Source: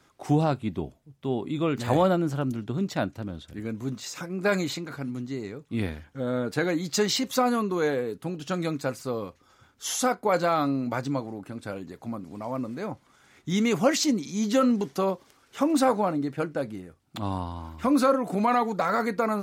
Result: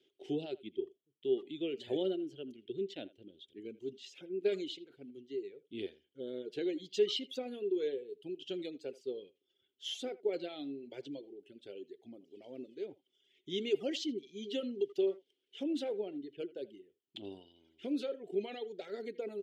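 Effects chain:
pair of resonant band-passes 1,100 Hz, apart 3 octaves
reverb reduction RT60 1.7 s
far-end echo of a speakerphone 80 ms, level −19 dB
level +1 dB

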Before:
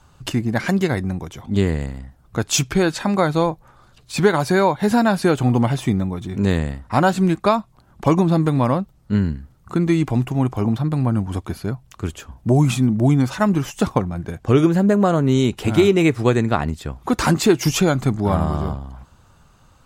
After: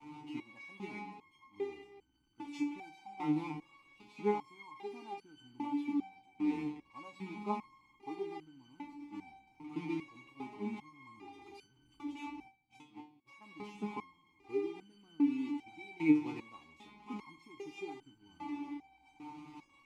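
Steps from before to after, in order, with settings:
linear delta modulator 64 kbit/s, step −16.5 dBFS
0:11.19–0:13.30: compressor whose output falls as the input rises −22 dBFS, ratio −0.5
downward expander −18 dBFS
formant filter u
convolution reverb RT60 0.80 s, pre-delay 3 ms, DRR 11.5 dB
step-sequenced resonator 2.5 Hz 150–1,500 Hz
level +4.5 dB

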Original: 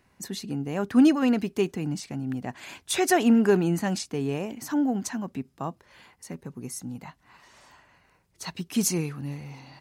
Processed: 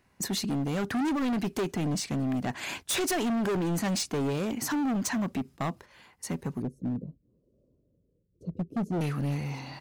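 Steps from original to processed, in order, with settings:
noise gate −49 dBFS, range −9 dB
0:06.62–0:09.01: elliptic low-pass filter 520 Hz, stop band 40 dB
downward compressor 2 to 1, threshold −28 dBFS, peak gain reduction 8 dB
hard clipping −32.5 dBFS, distortion −6 dB
level +6.5 dB

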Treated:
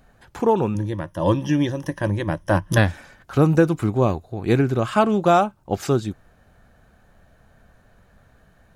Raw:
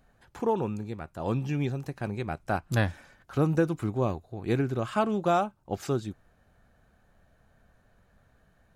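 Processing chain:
0:00.74–0:02.78: EQ curve with evenly spaced ripples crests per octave 1.2, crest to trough 14 dB
level +8.5 dB

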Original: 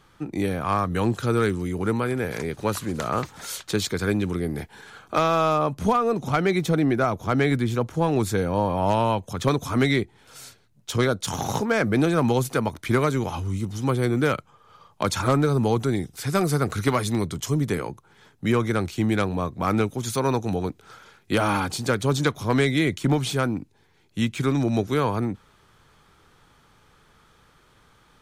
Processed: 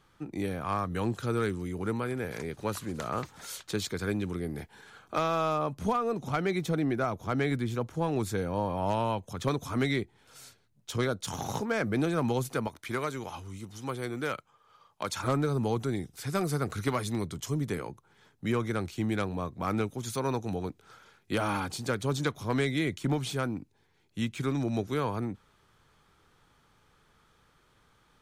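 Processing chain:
0:12.67–0:15.24: low-shelf EQ 360 Hz −9 dB
level −7.5 dB

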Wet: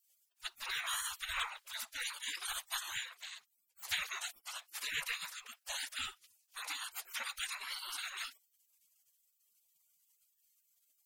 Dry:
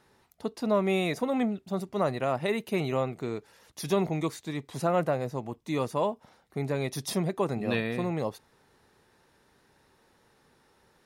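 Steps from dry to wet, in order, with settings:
random phases in short frames
0:03.09–0:03.93: tube saturation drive 27 dB, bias 0.75
gate on every frequency bin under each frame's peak −30 dB weak
level +12.5 dB

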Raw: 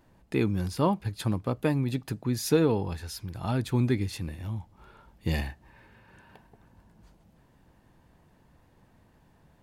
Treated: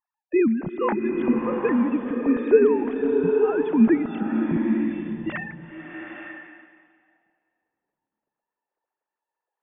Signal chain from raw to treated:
three sine waves on the formant tracks
dynamic equaliser 1,700 Hz, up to +7 dB, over −49 dBFS, Q 1.5
noise gate −54 dBFS, range −19 dB
spectral tilt −3 dB per octave
slow-attack reverb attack 870 ms, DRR 2 dB

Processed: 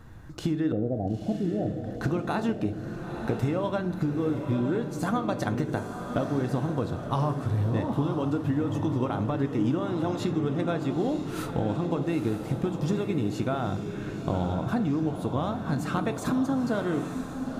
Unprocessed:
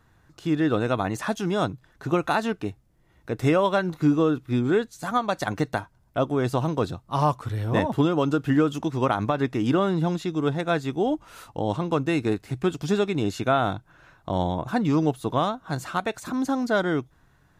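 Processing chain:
0:00.72–0:01.71: Butterworth low-pass 760 Hz 96 dB per octave
low-shelf EQ 460 Hz +8.5 dB
0:09.79–0:10.22: high-pass filter 340 Hz 12 dB per octave
downward compressor 16 to 1, threshold −30 dBFS, peak gain reduction 21.5 dB
feedback delay with all-pass diffusion 937 ms, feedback 47%, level −7 dB
on a send at −10 dB: convolution reverb RT60 0.65 s, pre-delay 4 ms
on the sum: level +5.5 dB

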